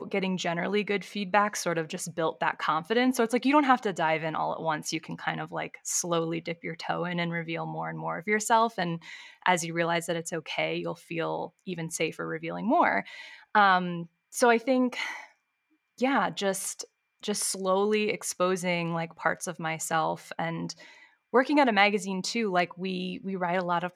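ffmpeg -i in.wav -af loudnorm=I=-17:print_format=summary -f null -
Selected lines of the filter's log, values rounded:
Input Integrated:    -27.9 LUFS
Input True Peak:      -6.0 dBTP
Input LRA:             3.8 LU
Input Threshold:     -38.1 LUFS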